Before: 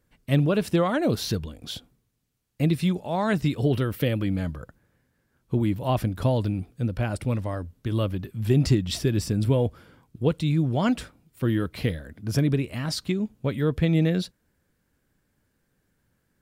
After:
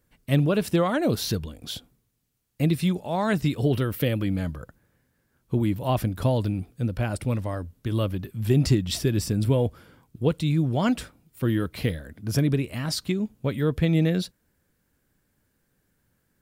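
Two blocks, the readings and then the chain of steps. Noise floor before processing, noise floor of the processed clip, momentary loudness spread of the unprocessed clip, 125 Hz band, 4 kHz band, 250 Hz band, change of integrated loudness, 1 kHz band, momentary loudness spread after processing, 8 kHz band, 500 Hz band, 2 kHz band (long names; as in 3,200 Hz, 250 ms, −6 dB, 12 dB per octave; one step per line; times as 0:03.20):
−73 dBFS, −72 dBFS, 8 LU, 0.0 dB, +1.0 dB, 0.0 dB, 0.0 dB, 0.0 dB, 8 LU, +2.5 dB, 0.0 dB, 0.0 dB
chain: high-shelf EQ 9,300 Hz +6.5 dB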